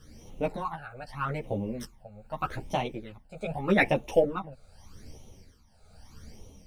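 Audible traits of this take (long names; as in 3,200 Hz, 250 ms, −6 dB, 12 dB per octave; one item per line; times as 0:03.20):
phaser sweep stages 12, 0.81 Hz, lowest notch 310–1,600 Hz
tremolo triangle 0.84 Hz, depth 85%
a shimmering, thickened sound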